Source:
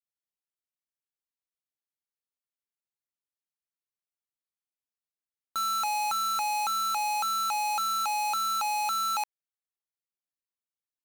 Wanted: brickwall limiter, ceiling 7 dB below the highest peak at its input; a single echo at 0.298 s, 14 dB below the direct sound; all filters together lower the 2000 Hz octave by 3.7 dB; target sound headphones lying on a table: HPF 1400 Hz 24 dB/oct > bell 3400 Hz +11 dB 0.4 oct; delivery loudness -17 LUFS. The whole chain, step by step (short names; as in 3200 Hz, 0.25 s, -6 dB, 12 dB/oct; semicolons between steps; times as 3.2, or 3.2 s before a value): bell 2000 Hz -8.5 dB; limiter -34.5 dBFS; HPF 1400 Hz 24 dB/oct; bell 3400 Hz +11 dB 0.4 oct; echo 0.298 s -14 dB; gain +21 dB